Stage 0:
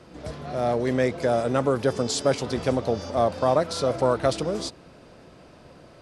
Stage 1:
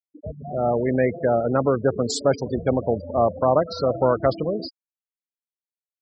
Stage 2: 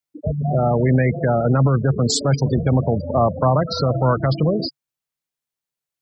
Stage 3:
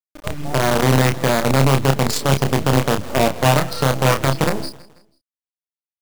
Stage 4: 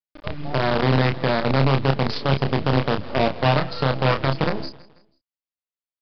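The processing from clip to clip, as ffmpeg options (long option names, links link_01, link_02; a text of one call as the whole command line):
ffmpeg -i in.wav -af "afftfilt=real='re*gte(hypot(re,im),0.0631)':imag='im*gte(hypot(re,im),0.0631)':win_size=1024:overlap=0.75,volume=2.5dB" out.wav
ffmpeg -i in.wav -filter_complex "[0:a]equalizer=frequency=140:width_type=o:width=0.34:gain=11.5,acrossover=split=270|770|3500[link_01][link_02][link_03][link_04];[link_02]acompressor=threshold=-30dB:ratio=6[link_05];[link_01][link_05][link_03][link_04]amix=inputs=4:normalize=0,alimiter=limit=-16.5dB:level=0:latency=1:release=43,volume=8dB" out.wav
ffmpeg -i in.wav -filter_complex "[0:a]acrusher=bits=3:dc=4:mix=0:aa=0.000001,asplit=2[link_01][link_02];[link_02]adelay=30,volume=-6dB[link_03];[link_01][link_03]amix=inputs=2:normalize=0,aecho=1:1:163|326|489:0.1|0.043|0.0185,volume=-1dB" out.wav
ffmpeg -i in.wav -af "aresample=11025,aresample=44100,volume=-3.5dB" out.wav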